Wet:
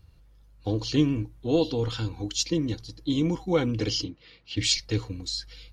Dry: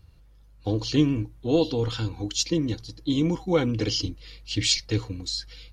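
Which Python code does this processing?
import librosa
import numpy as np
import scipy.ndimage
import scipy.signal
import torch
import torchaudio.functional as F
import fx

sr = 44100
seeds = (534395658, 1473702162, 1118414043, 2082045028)

y = fx.bandpass_edges(x, sr, low_hz=140.0, high_hz=3200.0, at=(4.03, 4.56), fade=0.02)
y = y * librosa.db_to_amplitude(-1.5)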